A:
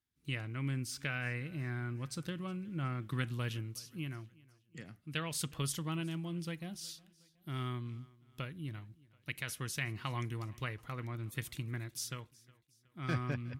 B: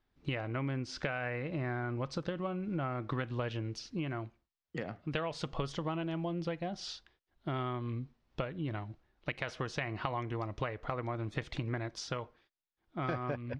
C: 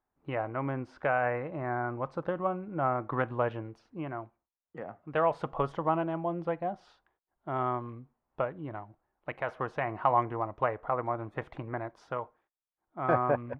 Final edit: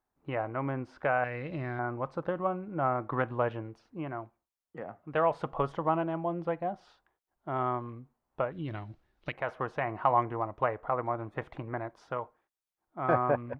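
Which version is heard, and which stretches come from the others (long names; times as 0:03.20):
C
0:01.24–0:01.79: punch in from B
0:08.52–0:09.33: punch in from B
not used: A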